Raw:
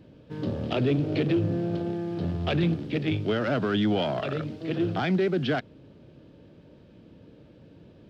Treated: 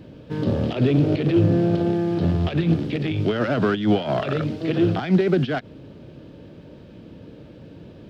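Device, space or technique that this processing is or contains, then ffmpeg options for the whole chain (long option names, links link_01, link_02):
de-esser from a sidechain: -filter_complex "[0:a]asplit=2[link_01][link_02];[link_02]highpass=frequency=4900:width=0.5412,highpass=frequency=4900:width=1.3066,apad=whole_len=357104[link_03];[link_01][link_03]sidechaincompress=threshold=-58dB:ratio=8:attack=5:release=68,volume=9dB"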